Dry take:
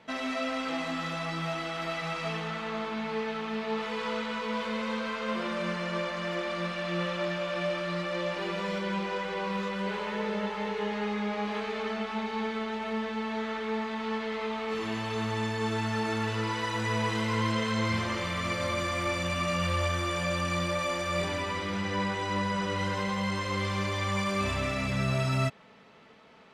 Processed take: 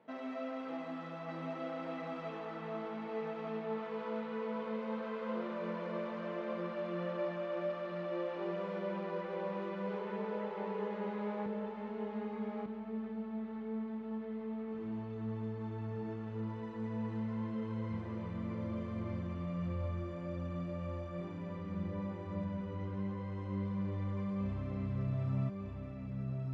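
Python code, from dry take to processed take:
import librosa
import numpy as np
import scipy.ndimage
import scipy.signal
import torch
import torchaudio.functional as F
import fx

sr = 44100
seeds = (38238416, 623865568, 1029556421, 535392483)

y = fx.bandpass_q(x, sr, hz=fx.steps((0.0, 420.0), (11.46, 140.0)), q=0.68)
y = y + 10.0 ** (-3.0 / 20.0) * np.pad(y, (int(1198 * sr / 1000.0), 0))[:len(y)]
y = F.gain(torch.from_numpy(y), -6.0).numpy()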